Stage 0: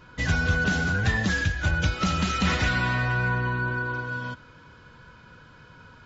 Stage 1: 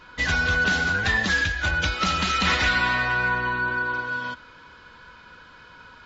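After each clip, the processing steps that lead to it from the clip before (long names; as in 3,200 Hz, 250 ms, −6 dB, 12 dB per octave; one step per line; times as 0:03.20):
graphic EQ with 10 bands 125 Hz −10 dB, 1,000 Hz +4 dB, 2,000 Hz +4 dB, 4,000 Hz +6 dB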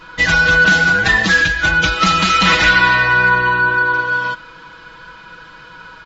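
comb filter 6.1 ms, depth 67%
level +7 dB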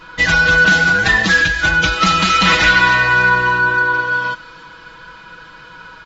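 delay with a high-pass on its return 287 ms, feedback 56%, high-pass 5,600 Hz, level −9 dB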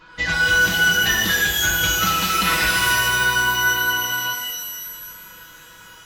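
reverb with rising layers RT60 1.3 s, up +12 semitones, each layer −2 dB, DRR 5 dB
level −9 dB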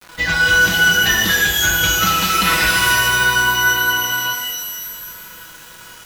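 bit reduction 7 bits
level +3.5 dB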